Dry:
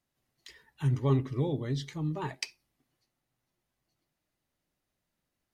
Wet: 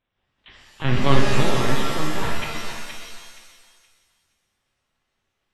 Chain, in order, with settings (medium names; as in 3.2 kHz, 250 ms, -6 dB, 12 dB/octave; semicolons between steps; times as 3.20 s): spectral contrast reduction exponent 0.55; LPC vocoder at 8 kHz pitch kept; thinning echo 471 ms, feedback 24%, high-pass 620 Hz, level -7 dB; pitch-shifted reverb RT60 1.3 s, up +7 st, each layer -2 dB, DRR 1 dB; trim +6.5 dB